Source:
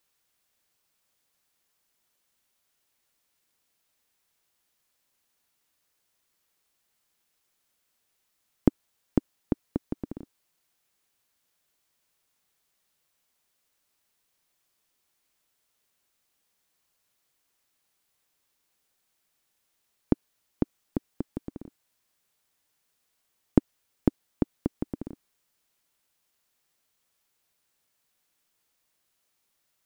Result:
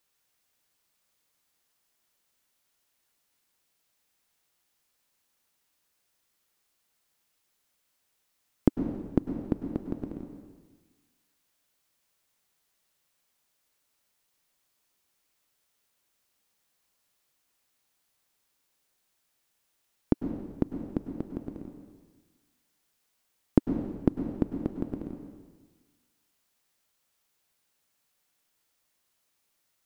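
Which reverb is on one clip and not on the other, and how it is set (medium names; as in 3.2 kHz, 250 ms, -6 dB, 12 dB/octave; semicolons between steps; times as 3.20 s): plate-style reverb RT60 1.4 s, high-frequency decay 1×, pre-delay 90 ms, DRR 5 dB; trim -1 dB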